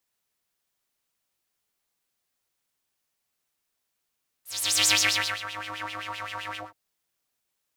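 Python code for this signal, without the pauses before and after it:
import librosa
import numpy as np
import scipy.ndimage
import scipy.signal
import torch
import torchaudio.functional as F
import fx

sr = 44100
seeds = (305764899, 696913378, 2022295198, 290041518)

y = fx.sub_patch_wobble(sr, seeds[0], note=44, wave='square', wave2='saw', interval_st=19, level2_db=-9.0, sub_db=-15.0, noise_db=-7, kind='bandpass', cutoff_hz=660.0, q=4.1, env_oct=3.5, env_decay_s=1.15, env_sustain_pct=40, attack_ms=428.0, decay_s=0.53, sustain_db=-17, release_s=0.17, note_s=2.11, lfo_hz=7.7, wobble_oct=0.8)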